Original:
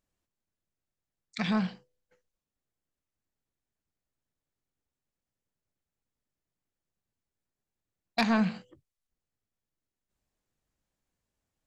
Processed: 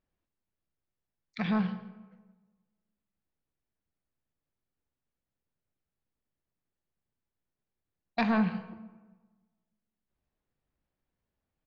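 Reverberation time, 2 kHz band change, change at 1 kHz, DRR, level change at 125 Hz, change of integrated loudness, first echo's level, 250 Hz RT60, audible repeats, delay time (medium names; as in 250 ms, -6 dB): 1.3 s, -2.0 dB, -0.5 dB, 10.5 dB, +0.5 dB, -1.0 dB, -20.5 dB, 1.5 s, 1, 167 ms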